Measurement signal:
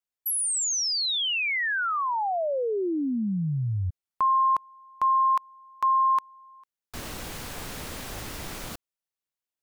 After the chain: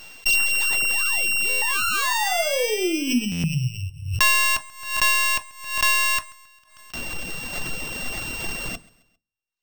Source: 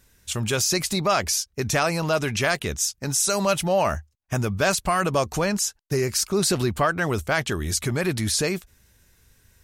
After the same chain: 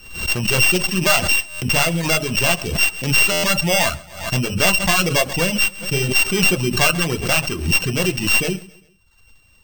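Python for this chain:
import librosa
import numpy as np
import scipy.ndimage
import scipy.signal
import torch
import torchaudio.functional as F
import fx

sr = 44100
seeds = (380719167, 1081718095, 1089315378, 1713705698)

p1 = np.r_[np.sort(x[:len(x) // 16 * 16].reshape(-1, 16), axis=1).ravel(), x[len(x) // 16 * 16:]]
p2 = fx.rider(p1, sr, range_db=5, speed_s=2.0)
p3 = p1 + (p2 * 10.0 ** (0.5 / 20.0))
p4 = fx.high_shelf(p3, sr, hz=8000.0, db=9.5)
p5 = fx.room_shoebox(p4, sr, seeds[0], volume_m3=190.0, walls='furnished', distance_m=0.88)
p6 = np.repeat(p5[::4], 4)[:len(p5)]
p7 = fx.dereverb_blind(p6, sr, rt60_s=0.9)
p8 = p7 + fx.echo_feedback(p7, sr, ms=134, feedback_pct=45, wet_db=-22.5, dry=0)
p9 = fx.buffer_glitch(p8, sr, at_s=(1.49, 3.31), block=512, repeats=10)
p10 = fx.pre_swell(p9, sr, db_per_s=91.0)
y = p10 * 10.0 ** (-5.5 / 20.0)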